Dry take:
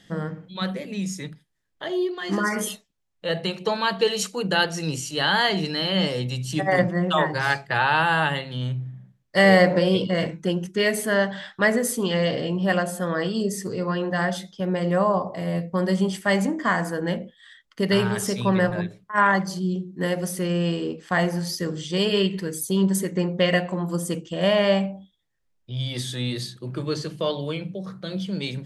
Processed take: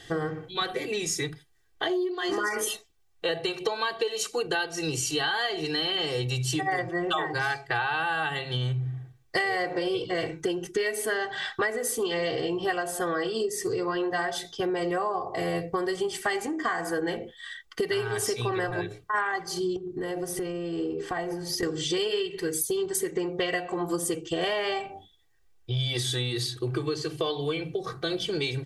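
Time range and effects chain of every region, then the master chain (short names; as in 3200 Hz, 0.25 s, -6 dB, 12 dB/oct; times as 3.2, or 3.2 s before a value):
19.76–21.63 tilt shelf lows +5 dB + notches 50/100/150/200/250/300/350/400/450/500 Hz + compressor 10:1, threshold -32 dBFS
whole clip: comb 2.6 ms, depth 98%; compressor 12:1, threshold -30 dBFS; bell 260 Hz -9.5 dB 0.25 oct; gain +5.5 dB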